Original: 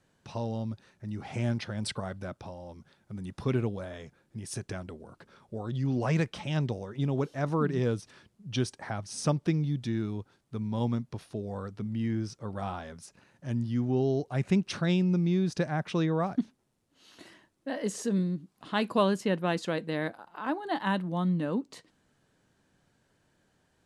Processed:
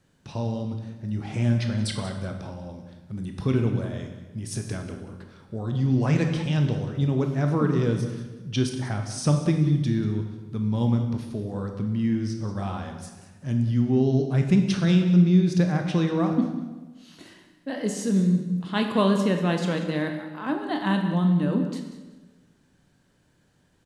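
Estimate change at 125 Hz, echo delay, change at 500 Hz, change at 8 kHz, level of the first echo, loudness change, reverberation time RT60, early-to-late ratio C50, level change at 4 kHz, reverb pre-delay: +8.0 dB, 0.188 s, +3.5 dB, +4.5 dB, -14.0 dB, +6.5 dB, 1.2 s, 6.0 dB, +4.5 dB, 20 ms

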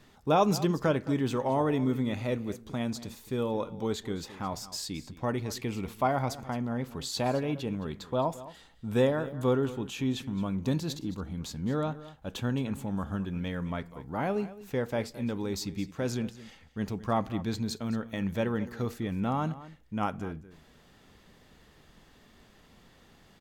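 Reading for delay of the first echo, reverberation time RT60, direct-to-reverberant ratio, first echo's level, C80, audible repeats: 0.217 s, none, none, -16.5 dB, none, 1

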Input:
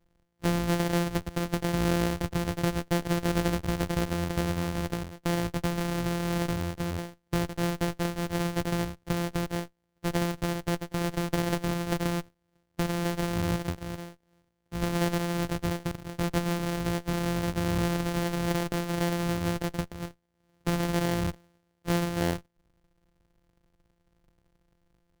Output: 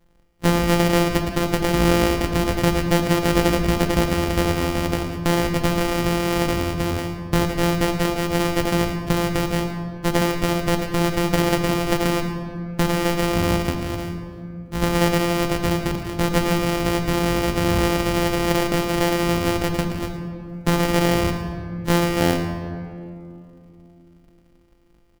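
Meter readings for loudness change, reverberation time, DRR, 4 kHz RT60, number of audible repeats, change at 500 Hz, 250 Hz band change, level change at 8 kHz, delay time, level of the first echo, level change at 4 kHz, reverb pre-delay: +8.5 dB, 2.5 s, 3.0 dB, 1.3 s, 1, +10.0 dB, +8.5 dB, +9.0 dB, 0.112 s, -14.0 dB, +10.5 dB, 4 ms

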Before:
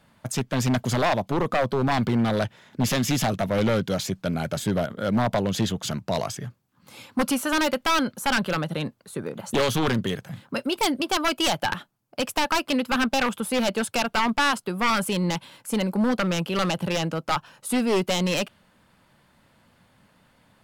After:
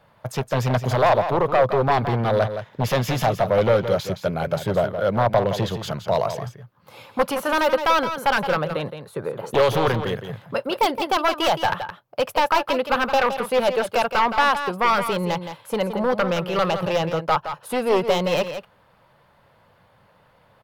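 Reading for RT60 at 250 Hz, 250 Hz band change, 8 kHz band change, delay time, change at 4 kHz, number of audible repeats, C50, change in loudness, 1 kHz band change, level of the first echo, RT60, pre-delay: none, -3.5 dB, -6.5 dB, 0.168 s, -1.0 dB, 1, none, +3.0 dB, +6.0 dB, -9.5 dB, none, none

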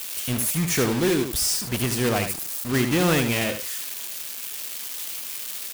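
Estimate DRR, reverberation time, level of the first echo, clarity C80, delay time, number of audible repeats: none, none, -8.0 dB, none, 77 ms, 1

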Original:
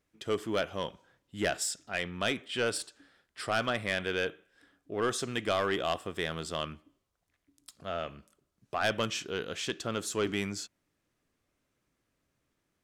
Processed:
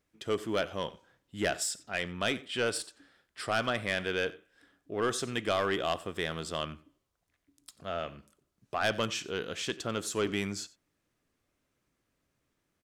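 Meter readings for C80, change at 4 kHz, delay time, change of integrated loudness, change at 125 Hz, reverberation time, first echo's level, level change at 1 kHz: none, 0.0 dB, 91 ms, 0.0 dB, 0.0 dB, none, -20.5 dB, 0.0 dB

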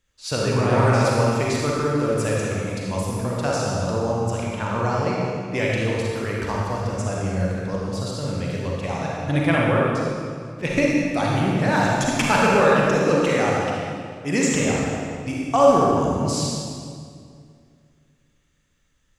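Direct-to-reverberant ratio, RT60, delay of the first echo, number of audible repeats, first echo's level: -4.5 dB, 2.2 s, none, none, none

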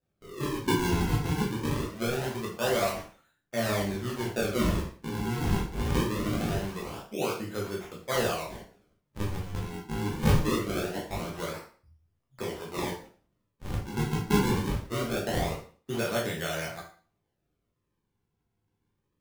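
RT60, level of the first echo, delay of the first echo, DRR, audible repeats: 0.40 s, none, none, -4.0 dB, none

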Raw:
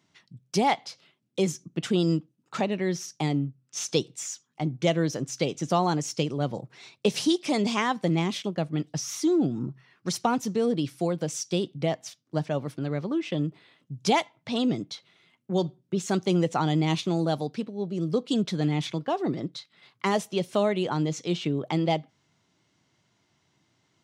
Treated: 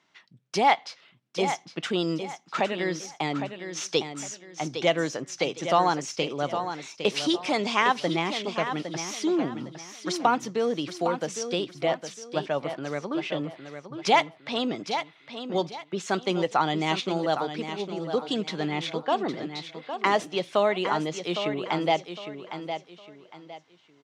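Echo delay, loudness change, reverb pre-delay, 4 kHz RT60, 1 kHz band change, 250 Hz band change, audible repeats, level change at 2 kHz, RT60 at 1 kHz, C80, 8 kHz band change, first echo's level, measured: 0.809 s, 0.0 dB, none, none, +4.5 dB, -3.5 dB, 3, +5.5 dB, none, none, -2.0 dB, -9.0 dB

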